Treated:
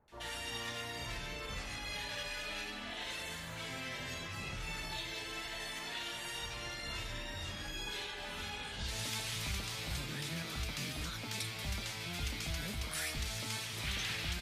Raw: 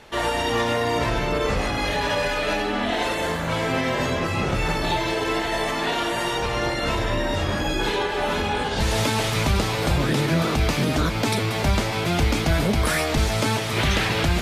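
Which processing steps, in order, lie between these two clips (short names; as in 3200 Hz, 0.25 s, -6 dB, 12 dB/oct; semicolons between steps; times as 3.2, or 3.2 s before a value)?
passive tone stack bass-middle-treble 5-5-5; bands offset in time lows, highs 80 ms, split 1100 Hz; gain -4.5 dB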